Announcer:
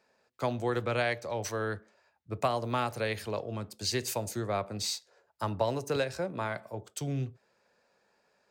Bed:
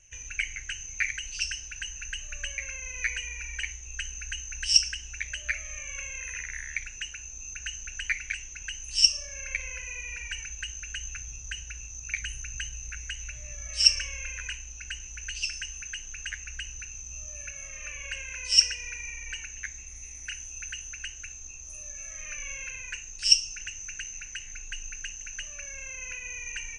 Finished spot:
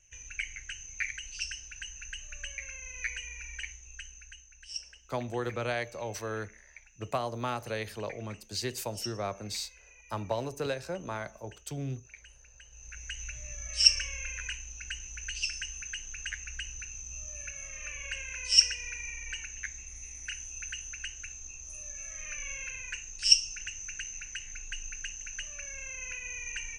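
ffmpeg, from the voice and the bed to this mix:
-filter_complex "[0:a]adelay=4700,volume=-3dB[a];[1:a]volume=12dB,afade=t=out:st=3.53:d=0.97:silence=0.211349,afade=t=in:st=12.67:d=0.57:silence=0.133352[b];[a][b]amix=inputs=2:normalize=0"

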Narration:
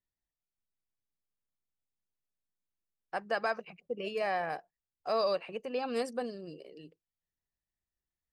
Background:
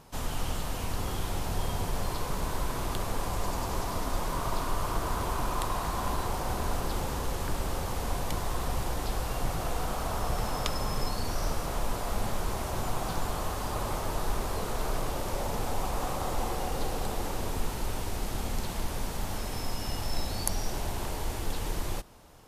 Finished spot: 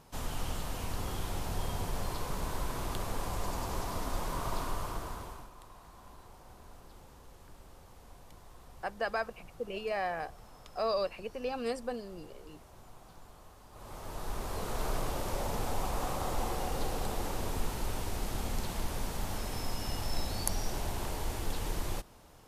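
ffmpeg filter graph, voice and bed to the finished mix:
-filter_complex "[0:a]adelay=5700,volume=-1.5dB[a];[1:a]volume=16dB,afade=t=out:st=4.61:d=0.89:silence=0.11885,afade=t=in:st=13.71:d=1.14:silence=0.1[b];[a][b]amix=inputs=2:normalize=0"

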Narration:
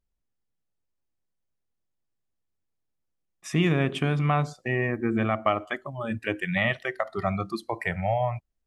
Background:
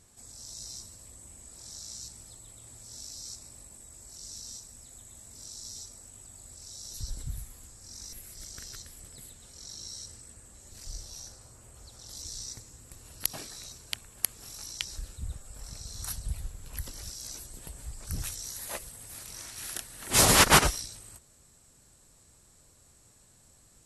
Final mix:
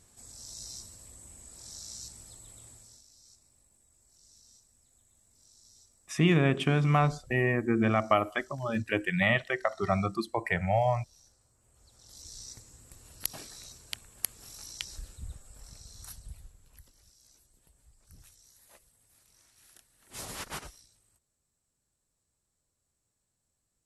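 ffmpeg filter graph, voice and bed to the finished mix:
-filter_complex "[0:a]adelay=2650,volume=-0.5dB[a];[1:a]volume=12dB,afade=t=out:st=2.61:d=0.42:silence=0.16788,afade=t=in:st=11.58:d=1.14:silence=0.223872,afade=t=out:st=14.98:d=1.93:silence=0.133352[b];[a][b]amix=inputs=2:normalize=0"

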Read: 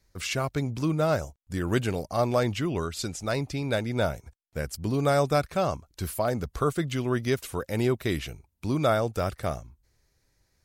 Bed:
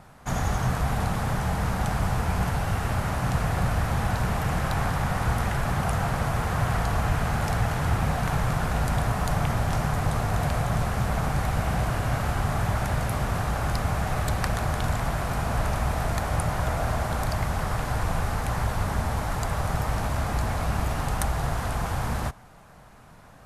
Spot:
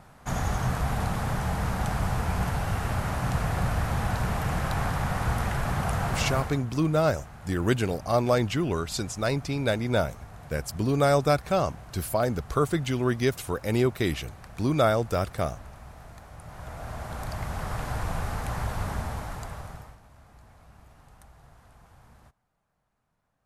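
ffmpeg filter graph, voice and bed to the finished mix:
-filter_complex "[0:a]adelay=5950,volume=1.5dB[a];[1:a]volume=14dB,afade=t=out:st=6.28:d=0.34:silence=0.125893,afade=t=in:st=16.39:d=1.44:silence=0.158489,afade=t=out:st=18.88:d=1.1:silence=0.0707946[b];[a][b]amix=inputs=2:normalize=0"

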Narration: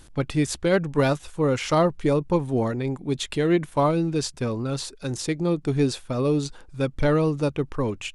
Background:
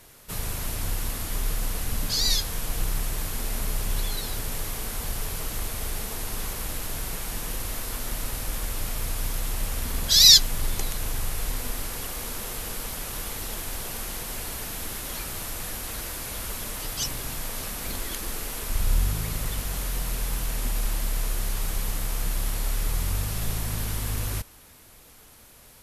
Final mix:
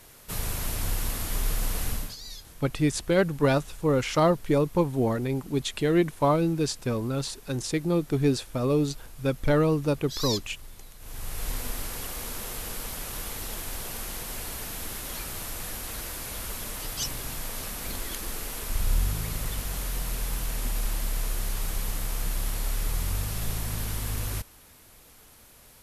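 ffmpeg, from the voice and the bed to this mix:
-filter_complex "[0:a]adelay=2450,volume=-1.5dB[a];[1:a]volume=16.5dB,afade=t=out:st=1.87:d=0.29:silence=0.11885,afade=t=in:st=10.99:d=0.52:silence=0.149624[b];[a][b]amix=inputs=2:normalize=0"

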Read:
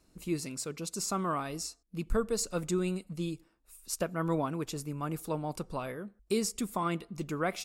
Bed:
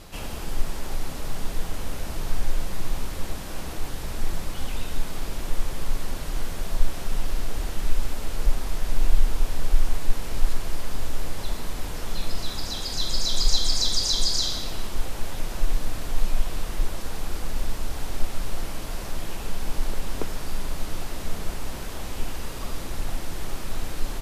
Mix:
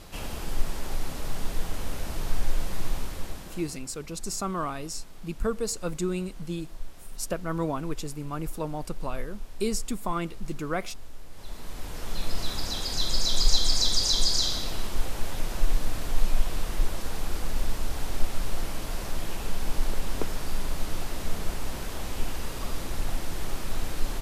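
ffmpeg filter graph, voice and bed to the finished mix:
-filter_complex "[0:a]adelay=3300,volume=1.5dB[a];[1:a]volume=14.5dB,afade=t=out:st=2.87:d=0.98:silence=0.177828,afade=t=in:st=11.29:d=1.16:silence=0.158489[b];[a][b]amix=inputs=2:normalize=0"

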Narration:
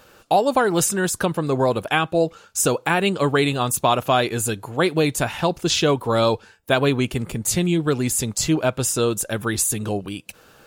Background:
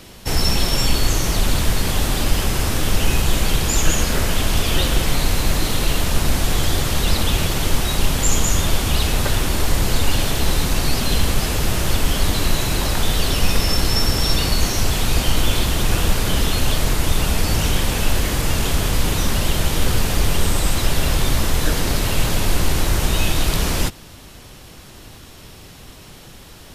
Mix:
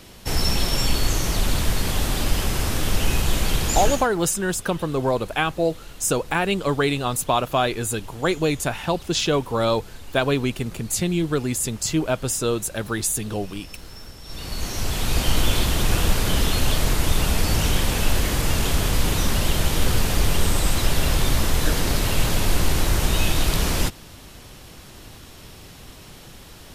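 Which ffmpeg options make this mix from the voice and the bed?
-filter_complex "[0:a]adelay=3450,volume=-2.5dB[a];[1:a]volume=17.5dB,afade=t=out:st=3.83:d=0.25:silence=0.105925,afade=t=in:st=14.24:d=1.1:silence=0.0891251[b];[a][b]amix=inputs=2:normalize=0"

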